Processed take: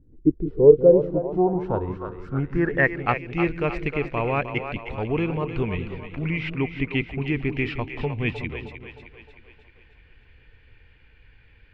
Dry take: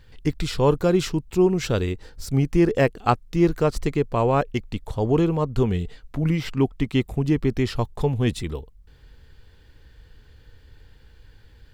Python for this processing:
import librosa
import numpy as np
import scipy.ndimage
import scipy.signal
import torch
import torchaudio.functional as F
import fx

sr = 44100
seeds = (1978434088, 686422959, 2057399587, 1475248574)

y = fx.echo_split(x, sr, split_hz=360.0, low_ms=189, high_ms=309, feedback_pct=52, wet_db=-8.5)
y = fx.filter_sweep_lowpass(y, sr, from_hz=300.0, to_hz=2400.0, start_s=0.11, end_s=3.2, q=6.3)
y = F.gain(torch.from_numpy(y), -5.5).numpy()